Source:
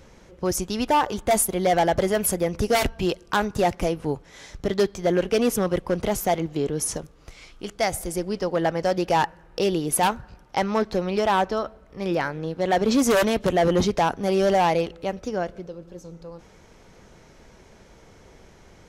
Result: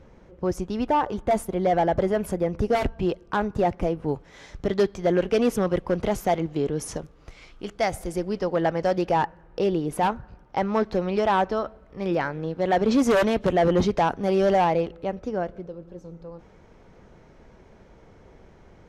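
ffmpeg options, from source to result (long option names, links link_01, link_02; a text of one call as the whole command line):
ffmpeg -i in.wav -af "asetnsamples=nb_out_samples=441:pad=0,asendcmd='4.08 lowpass f 2900;9.1 lowpass f 1300;10.74 lowpass f 2600;14.64 lowpass f 1400',lowpass=frequency=1100:poles=1" out.wav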